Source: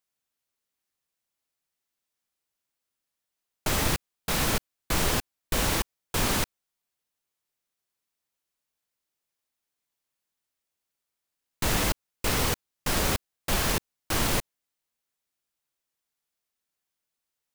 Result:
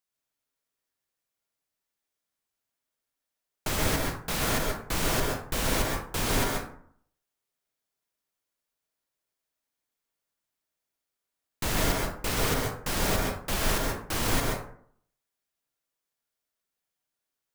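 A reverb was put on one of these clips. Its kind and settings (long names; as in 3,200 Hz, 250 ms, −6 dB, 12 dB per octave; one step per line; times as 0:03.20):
dense smooth reverb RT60 0.61 s, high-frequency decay 0.45×, pre-delay 115 ms, DRR −1 dB
level −3.5 dB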